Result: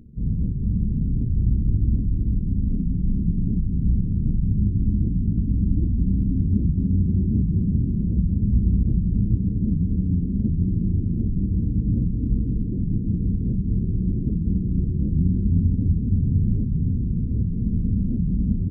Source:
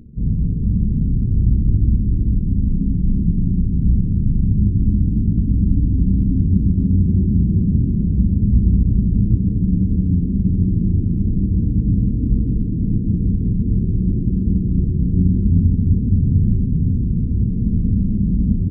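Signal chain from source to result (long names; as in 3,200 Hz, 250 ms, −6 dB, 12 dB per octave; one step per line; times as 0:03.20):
wow of a warped record 78 rpm, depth 250 cents
level −5 dB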